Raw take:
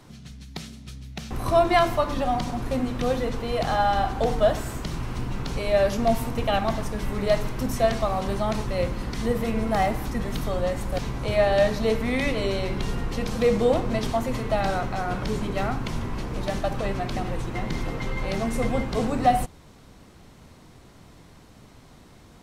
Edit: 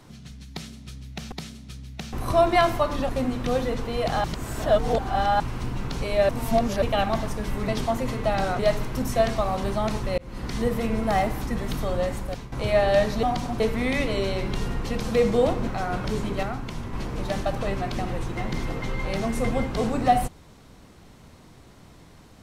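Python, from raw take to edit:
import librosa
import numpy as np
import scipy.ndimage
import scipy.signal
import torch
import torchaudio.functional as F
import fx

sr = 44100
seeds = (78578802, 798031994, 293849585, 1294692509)

y = fx.edit(x, sr, fx.repeat(start_s=0.5, length_s=0.82, count=2),
    fx.move(start_s=2.27, length_s=0.37, to_s=11.87),
    fx.reverse_span(start_s=3.79, length_s=1.16),
    fx.reverse_span(start_s=5.84, length_s=0.53),
    fx.fade_in_span(start_s=8.82, length_s=0.3),
    fx.fade_out_to(start_s=10.75, length_s=0.41, floor_db=-13.5),
    fx.move(start_s=13.94, length_s=0.91, to_s=7.23),
    fx.clip_gain(start_s=15.61, length_s=0.5, db=-4.0), tone=tone)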